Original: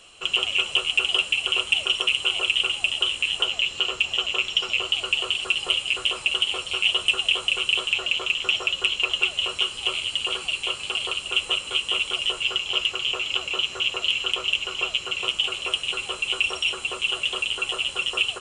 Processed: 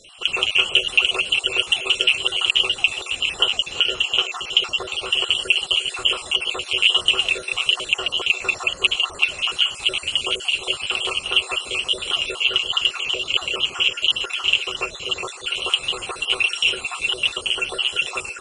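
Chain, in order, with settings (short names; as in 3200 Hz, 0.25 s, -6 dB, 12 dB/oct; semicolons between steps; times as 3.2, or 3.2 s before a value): random spectral dropouts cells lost 38%; band-limited delay 0.349 s, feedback 58%, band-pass 560 Hz, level -10 dB; gain +5.5 dB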